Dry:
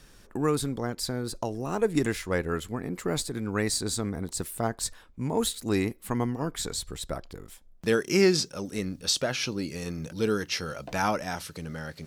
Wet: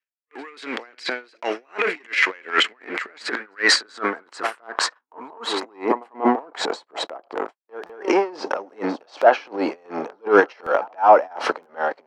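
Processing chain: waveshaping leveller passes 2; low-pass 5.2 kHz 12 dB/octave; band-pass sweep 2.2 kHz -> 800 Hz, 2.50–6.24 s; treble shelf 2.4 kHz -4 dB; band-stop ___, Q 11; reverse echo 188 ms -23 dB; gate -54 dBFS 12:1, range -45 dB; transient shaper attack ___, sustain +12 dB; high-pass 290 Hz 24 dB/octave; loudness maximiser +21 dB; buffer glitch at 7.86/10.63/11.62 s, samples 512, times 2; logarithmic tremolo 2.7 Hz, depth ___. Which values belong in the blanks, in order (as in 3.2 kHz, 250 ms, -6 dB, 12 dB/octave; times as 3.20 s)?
3.6 kHz, -11 dB, 31 dB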